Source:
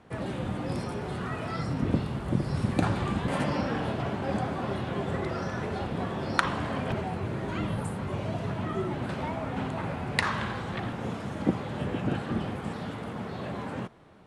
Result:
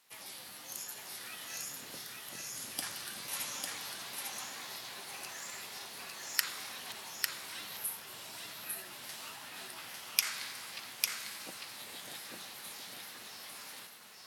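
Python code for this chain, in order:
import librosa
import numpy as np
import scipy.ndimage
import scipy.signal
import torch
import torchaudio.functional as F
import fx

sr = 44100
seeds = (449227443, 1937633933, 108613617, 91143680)

p1 = np.diff(x, prepend=0.0)
p2 = fx.formant_shift(p1, sr, semitones=4)
p3 = fx.high_shelf(p2, sr, hz=3900.0, db=10.0)
p4 = p3 + fx.echo_single(p3, sr, ms=850, db=-3.0, dry=0)
y = p4 * librosa.db_to_amplitude(1.0)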